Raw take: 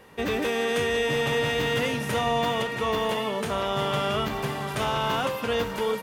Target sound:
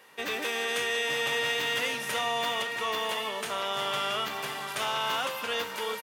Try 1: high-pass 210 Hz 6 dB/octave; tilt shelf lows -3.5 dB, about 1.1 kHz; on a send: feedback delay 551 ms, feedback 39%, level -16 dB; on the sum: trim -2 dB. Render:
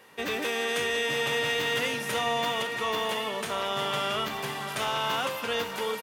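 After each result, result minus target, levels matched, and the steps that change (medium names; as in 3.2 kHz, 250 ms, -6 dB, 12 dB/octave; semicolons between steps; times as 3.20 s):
echo 240 ms late; 250 Hz band +5.0 dB
change: feedback delay 311 ms, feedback 39%, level -16 dB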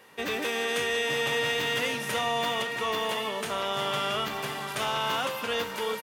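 250 Hz band +5.0 dB
change: high-pass 590 Hz 6 dB/octave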